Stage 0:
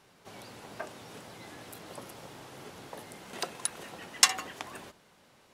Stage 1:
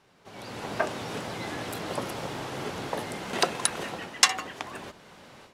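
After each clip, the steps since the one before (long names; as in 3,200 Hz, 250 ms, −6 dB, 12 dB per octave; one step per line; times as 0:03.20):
high-shelf EQ 8,300 Hz −10.5 dB
automatic gain control gain up to 14 dB
level −1 dB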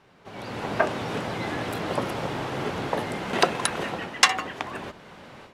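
bass and treble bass +1 dB, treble −8 dB
level +5 dB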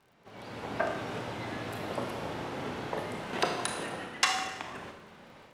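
four-comb reverb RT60 0.94 s, combs from 25 ms, DRR 3 dB
surface crackle 69 per second −45 dBFS
level −9 dB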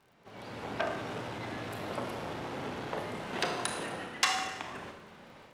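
saturating transformer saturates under 3,000 Hz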